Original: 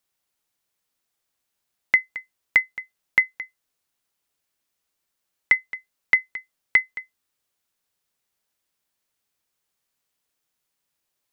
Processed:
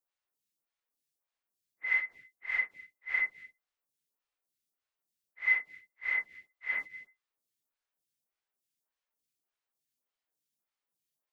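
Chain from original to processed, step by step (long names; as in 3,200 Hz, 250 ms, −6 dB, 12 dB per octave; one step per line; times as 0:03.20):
random phases in long frames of 200 ms
phaser with staggered stages 1.7 Hz
level −7.5 dB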